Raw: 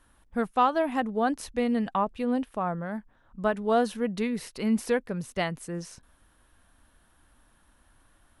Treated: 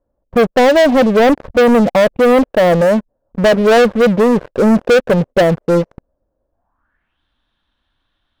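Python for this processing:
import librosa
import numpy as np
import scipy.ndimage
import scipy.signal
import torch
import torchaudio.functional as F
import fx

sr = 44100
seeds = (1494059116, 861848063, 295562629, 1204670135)

y = fx.filter_sweep_lowpass(x, sr, from_hz=560.0, to_hz=3600.0, start_s=6.5, end_s=7.22, q=5.1)
y = fx.leveller(y, sr, passes=5)
y = F.gain(torch.from_numpy(y), 1.5).numpy()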